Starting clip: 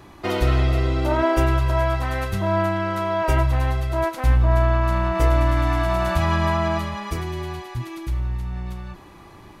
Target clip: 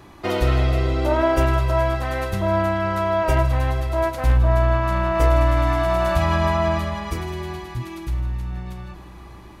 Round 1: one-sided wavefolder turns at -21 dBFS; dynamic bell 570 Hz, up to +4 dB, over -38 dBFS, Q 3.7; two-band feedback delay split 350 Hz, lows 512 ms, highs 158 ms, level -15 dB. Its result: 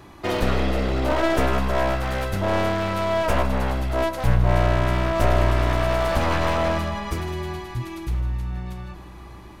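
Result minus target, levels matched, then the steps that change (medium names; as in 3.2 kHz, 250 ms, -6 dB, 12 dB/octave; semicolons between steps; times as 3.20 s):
one-sided wavefolder: distortion +37 dB
change: one-sided wavefolder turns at -9 dBFS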